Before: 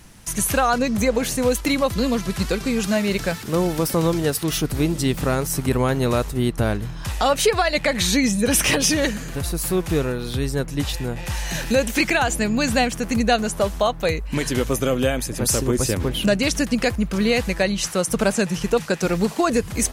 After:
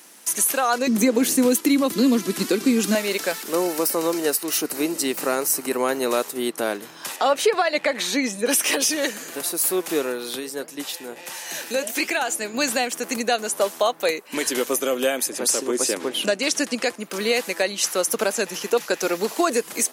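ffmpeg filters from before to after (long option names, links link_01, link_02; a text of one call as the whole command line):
ffmpeg -i in.wav -filter_complex "[0:a]asettb=1/sr,asplit=3[link_01][link_02][link_03];[link_01]atrim=end=0.874[link_04];[link_02]atrim=start=0.87:end=2.95,asetpts=PTS-STARTPTS,afade=type=in:duration=0.004:curve=qsin,afade=type=out:start_time=2.076:duration=0.004:curve=qsin,lowshelf=frequency=410:width_type=q:width=1.5:gain=10[link_05];[link_03]atrim=start=2.946[link_06];[link_04][link_05]acrossfade=duration=0.004:curve1=hsin:curve2=qsin[link_07];[link_07][link_06]acrossfade=duration=0.004:curve1=qsin:curve2=hsin,asettb=1/sr,asplit=3[link_08][link_09][link_10];[link_08]atrim=end=3.544[link_11];[link_09]atrim=start=3.54:end=6.12,asetpts=PTS-STARTPTS,afade=type=in:duration=0.004:curve=qsin,afade=type=out:start_time=2.576:duration=0.004:curve=qsin,bandreject=frequency=3400:width=7[link_12];[link_10]atrim=start=6.116[link_13];[link_11][link_12]acrossfade=duration=0.004:curve1=hsin:curve2=qsin[link_14];[link_14][link_13]acrossfade=duration=0.004:curve1=qsin:curve2=hsin,asettb=1/sr,asplit=3[link_15][link_16][link_17];[link_15]atrim=end=7.164[link_18];[link_16]atrim=start=7.16:end=8.49,asetpts=PTS-STARTPTS,afade=type=in:duration=0.004:curve=qsin,afade=type=out:start_time=1.326:duration=0.004:curve=qsin,lowpass=frequency=2600:poles=1[link_19];[link_17]atrim=start=8.486[link_20];[link_18][link_19]acrossfade=duration=0.004:curve1=hsin:curve2=qsin[link_21];[link_21][link_20]acrossfade=duration=0.004:curve1=qsin:curve2=hsin,asplit=3[link_22][link_23][link_24];[link_22]afade=type=out:start_time=10.39:duration=0.02[link_25];[link_23]flanger=delay=4.4:depth=7.9:regen=-80:speed=1.4:shape=triangular,afade=type=in:start_time=10.39:duration=0.02,afade=type=out:start_time=12.53:duration=0.02[link_26];[link_24]afade=type=in:start_time=12.53:duration=0.02[link_27];[link_25][link_26][link_27]amix=inputs=3:normalize=0,asettb=1/sr,asplit=3[link_28][link_29][link_30];[link_28]atrim=end=15.294[link_31];[link_29]atrim=start=15.29:end=17,asetpts=PTS-STARTPTS,afade=type=in:duration=0.004:curve=qsin,afade=type=out:start_time=1.706:duration=0.004:curve=qsin,lowpass=9300[link_32];[link_30]atrim=start=16.996[link_33];[link_31][link_32]acrossfade=duration=0.004:curve1=hsin:curve2=qsin[link_34];[link_34][link_33]acrossfade=duration=0.004:curve1=qsin:curve2=hsin,asettb=1/sr,asplit=3[link_35][link_36][link_37];[link_35]atrim=end=17.854[link_38];[link_36]atrim=start=17.85:end=19.34,asetpts=PTS-STARTPTS,afade=type=in:duration=0.004:curve=qsin,afade=type=out:start_time=1.486:duration=0.004:curve=qsin,equalizer=frequency=8500:width=7.9:gain=-12[link_39];[link_37]atrim=start=19.336[link_40];[link_38][link_39]acrossfade=duration=0.004:curve1=hsin:curve2=qsin[link_41];[link_41][link_40]acrossfade=duration=0.004:curve1=qsin:curve2=hsin,highpass=frequency=290:width=0.5412,highpass=frequency=290:width=1.3066,highshelf=frequency=7600:gain=9.5,alimiter=limit=-9dB:level=0:latency=1:release=300" out.wav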